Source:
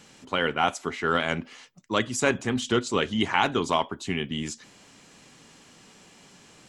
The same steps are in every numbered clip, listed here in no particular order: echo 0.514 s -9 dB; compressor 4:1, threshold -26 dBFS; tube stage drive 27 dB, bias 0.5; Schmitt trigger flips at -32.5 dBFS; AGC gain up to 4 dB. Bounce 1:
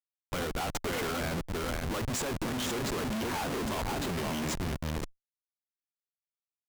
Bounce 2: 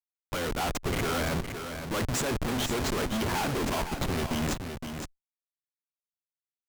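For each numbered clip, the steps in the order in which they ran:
echo > compressor > AGC > Schmitt trigger > tube stage; Schmitt trigger > tube stage > AGC > echo > compressor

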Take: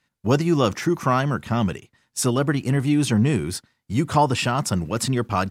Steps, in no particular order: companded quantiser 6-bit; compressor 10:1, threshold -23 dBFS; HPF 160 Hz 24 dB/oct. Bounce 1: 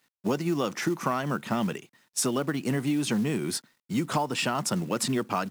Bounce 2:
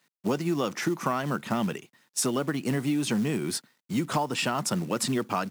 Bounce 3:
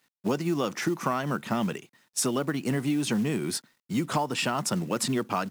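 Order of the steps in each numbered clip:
HPF > compressor > companded quantiser; companded quantiser > HPF > compressor; HPF > companded quantiser > compressor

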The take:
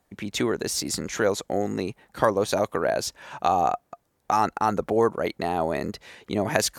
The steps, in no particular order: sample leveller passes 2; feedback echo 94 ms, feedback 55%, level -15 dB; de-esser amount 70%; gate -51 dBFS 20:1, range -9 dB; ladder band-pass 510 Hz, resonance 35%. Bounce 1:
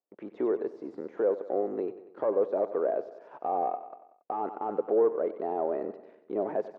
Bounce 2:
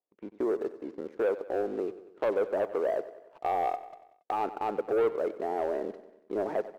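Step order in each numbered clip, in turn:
sample leveller > gate > feedback echo > de-esser > ladder band-pass; de-esser > ladder band-pass > gate > sample leveller > feedback echo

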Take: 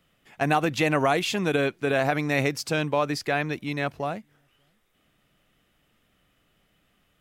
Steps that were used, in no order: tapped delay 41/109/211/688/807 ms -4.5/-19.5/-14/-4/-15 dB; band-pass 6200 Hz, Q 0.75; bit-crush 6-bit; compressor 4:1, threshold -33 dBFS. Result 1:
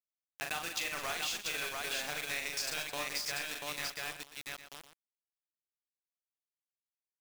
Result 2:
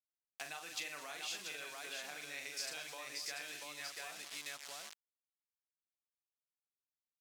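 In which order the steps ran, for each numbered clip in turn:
band-pass > bit-crush > tapped delay > compressor; tapped delay > bit-crush > compressor > band-pass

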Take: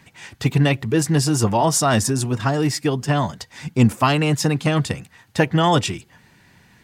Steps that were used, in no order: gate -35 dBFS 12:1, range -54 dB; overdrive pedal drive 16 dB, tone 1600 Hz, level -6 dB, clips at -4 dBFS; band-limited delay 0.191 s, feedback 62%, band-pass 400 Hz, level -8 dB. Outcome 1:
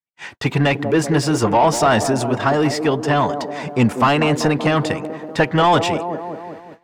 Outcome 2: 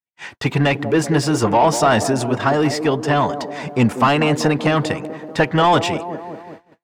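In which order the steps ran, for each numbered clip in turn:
band-limited delay > overdrive pedal > gate; overdrive pedal > band-limited delay > gate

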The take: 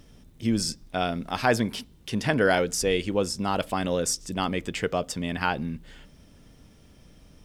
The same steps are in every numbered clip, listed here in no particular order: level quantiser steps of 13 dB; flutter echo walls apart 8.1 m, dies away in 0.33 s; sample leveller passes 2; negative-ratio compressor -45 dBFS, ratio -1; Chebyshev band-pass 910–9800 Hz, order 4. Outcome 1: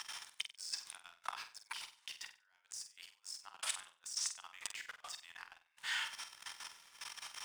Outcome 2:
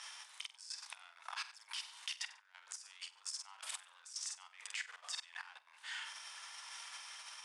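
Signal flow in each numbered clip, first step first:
negative-ratio compressor > level quantiser > Chebyshev band-pass > sample leveller > flutter echo; negative-ratio compressor > sample leveller > flutter echo > level quantiser > Chebyshev band-pass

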